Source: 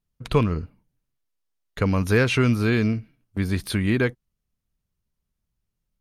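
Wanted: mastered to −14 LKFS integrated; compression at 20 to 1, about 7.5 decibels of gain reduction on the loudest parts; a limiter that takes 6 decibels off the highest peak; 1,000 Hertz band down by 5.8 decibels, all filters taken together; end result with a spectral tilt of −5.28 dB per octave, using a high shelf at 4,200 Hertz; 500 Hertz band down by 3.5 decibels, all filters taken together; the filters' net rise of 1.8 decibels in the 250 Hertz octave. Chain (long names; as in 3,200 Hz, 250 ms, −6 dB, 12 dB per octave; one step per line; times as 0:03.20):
parametric band 250 Hz +3.5 dB
parametric band 500 Hz −4.5 dB
parametric band 1,000 Hz −7.5 dB
high-shelf EQ 4,200 Hz +8 dB
downward compressor 20 to 1, threshold −21 dBFS
level +15 dB
brickwall limiter −2.5 dBFS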